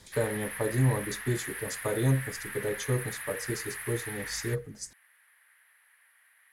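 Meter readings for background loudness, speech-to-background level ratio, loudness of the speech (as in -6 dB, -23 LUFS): -37.5 LUFS, 5.5 dB, -32.0 LUFS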